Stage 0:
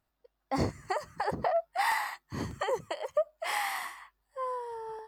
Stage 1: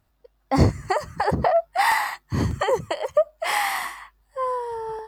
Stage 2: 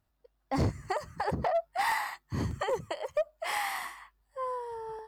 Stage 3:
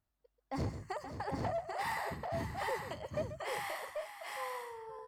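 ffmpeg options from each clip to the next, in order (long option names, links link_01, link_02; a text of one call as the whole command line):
ffmpeg -i in.wav -af "equalizer=frequency=70:width_type=o:width=2.9:gain=8.5,volume=8.5dB" out.wav
ffmpeg -i in.wav -af "asoftclip=type=hard:threshold=-13.5dB,volume=-9dB" out.wav
ffmpeg -i in.wav -af "aecho=1:1:136|526|789|834:0.266|0.299|0.668|0.237,volume=-8.5dB" out.wav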